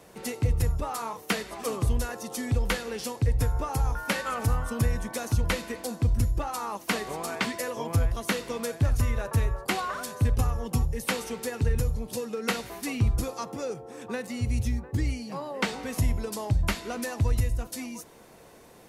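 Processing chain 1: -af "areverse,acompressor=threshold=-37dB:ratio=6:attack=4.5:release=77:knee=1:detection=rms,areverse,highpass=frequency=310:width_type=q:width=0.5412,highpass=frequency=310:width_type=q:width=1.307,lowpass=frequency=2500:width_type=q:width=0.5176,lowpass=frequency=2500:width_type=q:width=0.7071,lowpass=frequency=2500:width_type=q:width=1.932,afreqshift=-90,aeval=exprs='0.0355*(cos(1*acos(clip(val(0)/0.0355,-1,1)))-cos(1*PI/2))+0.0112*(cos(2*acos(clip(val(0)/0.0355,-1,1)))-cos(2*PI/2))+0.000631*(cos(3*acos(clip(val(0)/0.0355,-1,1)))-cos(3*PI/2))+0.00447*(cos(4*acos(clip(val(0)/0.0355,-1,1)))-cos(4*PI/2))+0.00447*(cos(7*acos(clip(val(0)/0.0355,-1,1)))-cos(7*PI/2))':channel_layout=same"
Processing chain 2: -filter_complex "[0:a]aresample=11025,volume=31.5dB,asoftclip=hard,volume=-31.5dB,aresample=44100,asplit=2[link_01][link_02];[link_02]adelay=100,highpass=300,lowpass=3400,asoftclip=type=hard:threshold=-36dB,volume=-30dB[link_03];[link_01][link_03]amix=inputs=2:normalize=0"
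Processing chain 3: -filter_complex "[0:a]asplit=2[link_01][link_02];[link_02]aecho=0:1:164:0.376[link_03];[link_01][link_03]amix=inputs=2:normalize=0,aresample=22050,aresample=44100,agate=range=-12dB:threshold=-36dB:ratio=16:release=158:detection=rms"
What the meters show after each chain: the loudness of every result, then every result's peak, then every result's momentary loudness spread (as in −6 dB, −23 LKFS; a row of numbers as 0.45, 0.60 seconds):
−46.5, −36.0, −29.0 LKFS; −28.0, −26.5, −13.0 dBFS; 13, 3, 7 LU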